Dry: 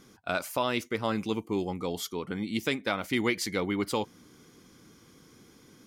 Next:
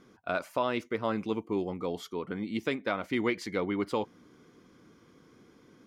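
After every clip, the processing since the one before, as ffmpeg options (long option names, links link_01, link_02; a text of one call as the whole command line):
ffmpeg -i in.wav -af "lowpass=frequency=1300:poles=1,lowshelf=frequency=210:gain=-8,bandreject=frequency=820:width=15,volume=2dB" out.wav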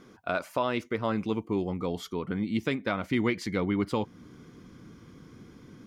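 ffmpeg -i in.wav -filter_complex "[0:a]asubboost=boost=3:cutoff=240,asplit=2[link_01][link_02];[link_02]acompressor=threshold=-39dB:ratio=6,volume=-2dB[link_03];[link_01][link_03]amix=inputs=2:normalize=0" out.wav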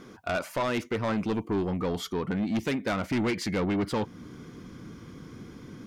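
ffmpeg -i in.wav -af "asoftclip=type=tanh:threshold=-28.5dB,volume=5.5dB" out.wav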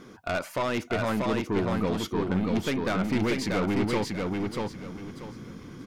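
ffmpeg -i in.wav -af "aeval=exprs='0.075*(cos(1*acos(clip(val(0)/0.075,-1,1)))-cos(1*PI/2))+0.0119*(cos(2*acos(clip(val(0)/0.075,-1,1)))-cos(2*PI/2))':channel_layout=same,aecho=1:1:637|1274|1911|2548:0.708|0.184|0.0479|0.0124" out.wav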